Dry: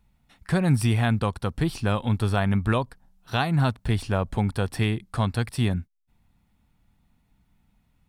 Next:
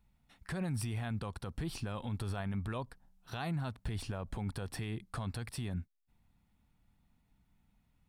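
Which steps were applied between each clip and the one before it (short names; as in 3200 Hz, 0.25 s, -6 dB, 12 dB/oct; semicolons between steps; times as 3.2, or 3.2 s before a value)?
limiter -22.5 dBFS, peak gain reduction 11 dB; gain -6.5 dB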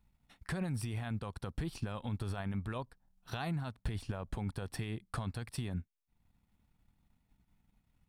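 transient shaper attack +4 dB, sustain -7 dB; gain -1 dB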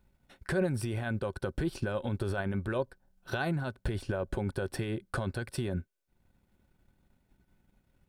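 small resonant body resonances 380/540/1500 Hz, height 13 dB, ringing for 45 ms; gain +3 dB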